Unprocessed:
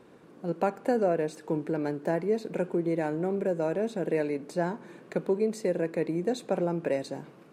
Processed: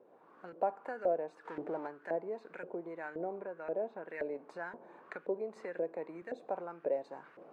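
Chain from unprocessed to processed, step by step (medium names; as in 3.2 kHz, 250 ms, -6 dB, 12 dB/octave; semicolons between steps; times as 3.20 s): recorder AGC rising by 19 dB/s; 1.45–1.87 s: power-law waveshaper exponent 0.7; 3.38–4.08 s: Bessel low-pass 3.3 kHz, order 2; LFO band-pass saw up 1.9 Hz 520–1800 Hz; 5.56–6.22 s: three bands compressed up and down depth 40%; trim -2 dB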